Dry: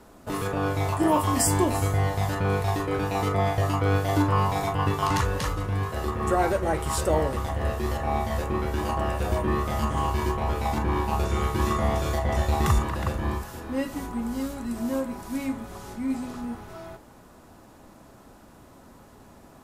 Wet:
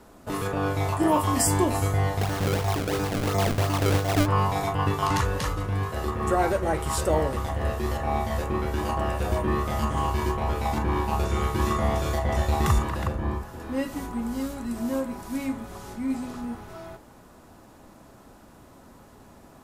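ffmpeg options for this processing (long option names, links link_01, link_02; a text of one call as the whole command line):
ffmpeg -i in.wav -filter_complex "[0:a]asplit=3[link_01][link_02][link_03];[link_01]afade=type=out:start_time=2.19:duration=0.02[link_04];[link_02]acrusher=samples=28:mix=1:aa=0.000001:lfo=1:lforange=44.8:lforate=2.9,afade=type=in:start_time=2.19:duration=0.02,afade=type=out:start_time=4.25:duration=0.02[link_05];[link_03]afade=type=in:start_time=4.25:duration=0.02[link_06];[link_04][link_05][link_06]amix=inputs=3:normalize=0,asettb=1/sr,asplit=3[link_07][link_08][link_09];[link_07]atrim=end=13.074[link_10];[link_08]atrim=start=13.07:end=13.6,asetpts=PTS-STARTPTS,afade=type=in:duration=0.004:curve=qsin,afade=type=out:start_time=0.526:duration=0.004:curve=qsin,highshelf=frequency=2100:gain=-9.5[link_11];[link_09]atrim=start=13.596[link_12];[link_10][link_11]acrossfade=duration=0.004:curve1=hsin:curve2=qsin[link_13];[link_13][link_12]acrossfade=duration=0.004:curve1=qsin:curve2=hsin" out.wav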